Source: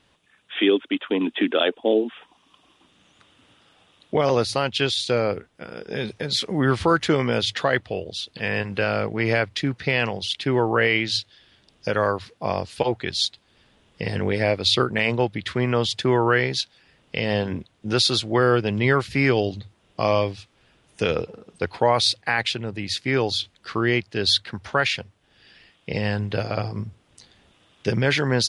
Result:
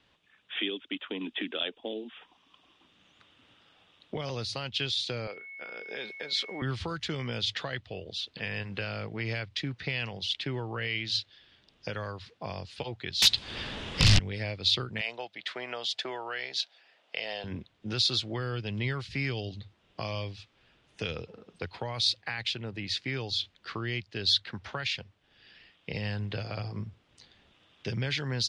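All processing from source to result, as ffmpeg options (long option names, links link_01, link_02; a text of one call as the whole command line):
ffmpeg -i in.wav -filter_complex "[0:a]asettb=1/sr,asplit=3[link_01][link_02][link_03];[link_01]atrim=end=5.274[link_04];[link_02]atrim=start=5.27:end=6.62,asetpts=PTS-STARTPTS,afade=type=in:duration=0.004:curve=qsin,afade=type=out:start_time=1.346:duration=0.004:curve=qsin,highpass=430,highshelf=frequency=4900:gain=-4,aeval=exprs='val(0)+0.0126*sin(2*PI*2200*n/s)':channel_layout=same[link_05];[link_03]atrim=start=6.616[link_06];[link_04][link_05]acrossfade=duration=0.004:curve1=hsin:curve2=qsin[link_07];[link_07][link_06]acrossfade=duration=0.004:curve1=qsin:curve2=hsin,asettb=1/sr,asplit=3[link_08][link_09][link_10];[link_08]atrim=end=13.224[link_11];[link_09]atrim=start=13.22:end=14.19,asetpts=PTS-STARTPTS,afade=type=in:duration=0.004:curve=qsin,afade=type=out:start_time=0.966:duration=0.004:curve=qsin,acontrast=67,aeval=exprs='0.501*sin(PI/2*6.31*val(0)/0.501)':channel_layout=same[link_12];[link_10]atrim=start=14.186[link_13];[link_11][link_12]acrossfade=duration=0.004:curve1=hsin:curve2=qsin[link_14];[link_14][link_13]acrossfade=duration=0.004:curve1=qsin:curve2=hsin,asettb=1/sr,asplit=3[link_15][link_16][link_17];[link_15]atrim=end=15.014[link_18];[link_16]atrim=start=15.01:end=17.44,asetpts=PTS-STARTPTS,afade=type=in:duration=0.004:curve=qsin,afade=type=out:start_time=2.426:duration=0.004:curve=qsin,highpass=520,equalizer=frequency=680:width=3.3:gain=9,bandreject=frequency=1100:width=24[link_19];[link_17]atrim=start=17.436[link_20];[link_18][link_19]acrossfade=duration=0.004:curve1=hsin:curve2=qsin[link_21];[link_21][link_20]acrossfade=duration=0.004:curve1=qsin:curve2=hsin,lowpass=3800,highshelf=frequency=2700:gain=8.5,acrossover=split=160|3000[link_22][link_23][link_24];[link_23]acompressor=threshold=-29dB:ratio=6[link_25];[link_22][link_25][link_24]amix=inputs=3:normalize=0,volume=-6.5dB" out.wav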